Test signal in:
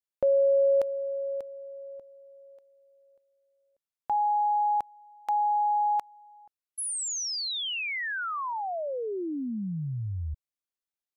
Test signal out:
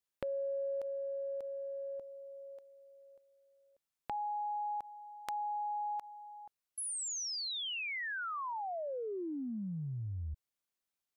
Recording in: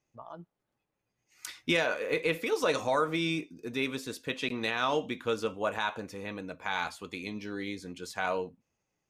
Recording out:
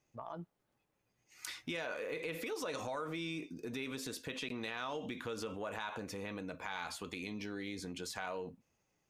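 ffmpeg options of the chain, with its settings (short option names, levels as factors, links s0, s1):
-af "acompressor=threshold=0.00794:ratio=4:attack=2.8:release=72:knee=1:detection=peak,volume=1.33"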